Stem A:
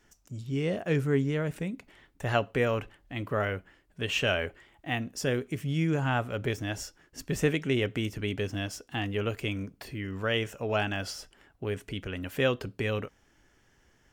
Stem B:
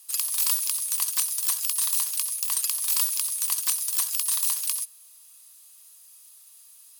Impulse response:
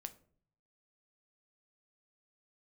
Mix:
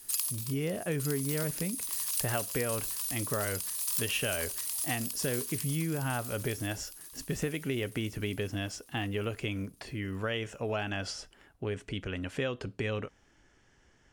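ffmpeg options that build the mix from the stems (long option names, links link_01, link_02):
-filter_complex "[0:a]lowpass=frequency=9400:width=0.5412,lowpass=frequency=9400:width=1.3066,acompressor=threshold=-29dB:ratio=6,volume=0dB,asplit=2[link_01][link_02];[1:a]acompressor=threshold=-29dB:ratio=3,volume=0dB,asplit=2[link_03][link_04];[link_04]volume=-7.5dB[link_05];[link_02]apad=whole_len=308260[link_06];[link_03][link_06]sidechaincompress=threshold=-48dB:ratio=8:attack=39:release=368[link_07];[link_05]aecho=0:1:909|1818|2727|3636|4545|5454|6363:1|0.5|0.25|0.125|0.0625|0.0312|0.0156[link_08];[link_01][link_07][link_08]amix=inputs=3:normalize=0"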